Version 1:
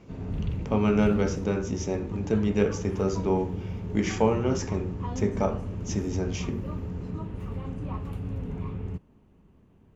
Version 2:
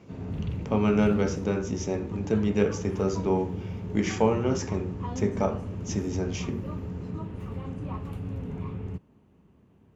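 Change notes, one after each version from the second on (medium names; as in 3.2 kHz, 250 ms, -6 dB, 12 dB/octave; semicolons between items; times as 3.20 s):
master: add high-pass 70 Hz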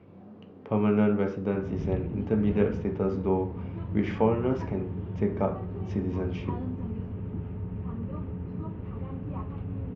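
background: entry +1.45 s; master: add distance through air 410 m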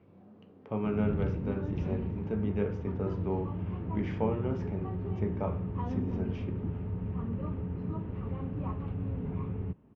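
speech -7.0 dB; background: entry -0.70 s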